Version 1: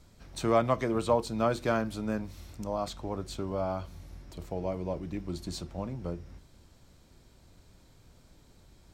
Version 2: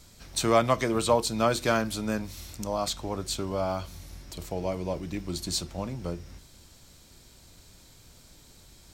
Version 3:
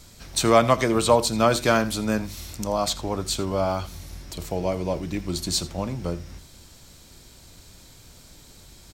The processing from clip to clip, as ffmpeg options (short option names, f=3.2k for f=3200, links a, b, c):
-af "highshelf=f=2.5k:g=12,volume=2dB"
-af "aecho=1:1:83:0.126,volume=5dB"